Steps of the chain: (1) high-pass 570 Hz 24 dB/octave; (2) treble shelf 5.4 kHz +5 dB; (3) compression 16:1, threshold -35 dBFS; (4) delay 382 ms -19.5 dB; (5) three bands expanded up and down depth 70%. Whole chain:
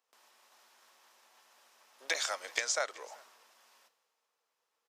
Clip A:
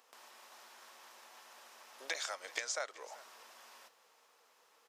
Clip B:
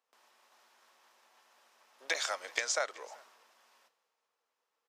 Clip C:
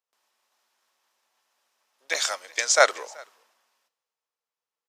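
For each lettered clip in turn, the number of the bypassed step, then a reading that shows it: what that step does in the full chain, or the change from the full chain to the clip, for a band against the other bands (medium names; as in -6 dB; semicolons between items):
5, 250 Hz band +2.0 dB; 2, 8 kHz band -2.0 dB; 3, mean gain reduction 4.5 dB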